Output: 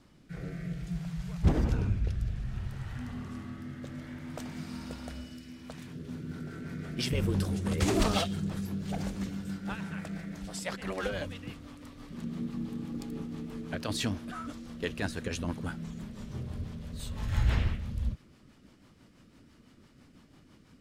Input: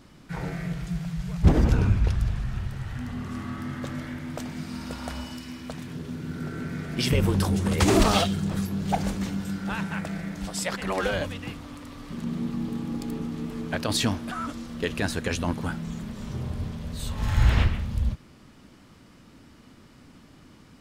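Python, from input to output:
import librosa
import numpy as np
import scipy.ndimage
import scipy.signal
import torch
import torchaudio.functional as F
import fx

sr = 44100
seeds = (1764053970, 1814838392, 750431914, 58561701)

y = fx.rotary_switch(x, sr, hz=0.6, then_hz=6.0, switch_at_s=5.51)
y = y * librosa.db_to_amplitude(-5.0)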